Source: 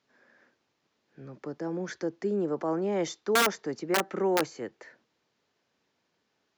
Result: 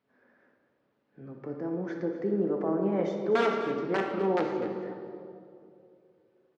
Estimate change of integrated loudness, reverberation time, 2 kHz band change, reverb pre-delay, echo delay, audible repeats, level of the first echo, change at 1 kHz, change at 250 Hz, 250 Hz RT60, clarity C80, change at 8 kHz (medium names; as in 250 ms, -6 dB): -0.5 dB, 2.6 s, -4.5 dB, 4 ms, 63 ms, 2, -11.5 dB, -1.5 dB, +2.0 dB, 2.6 s, 5.0 dB, under -20 dB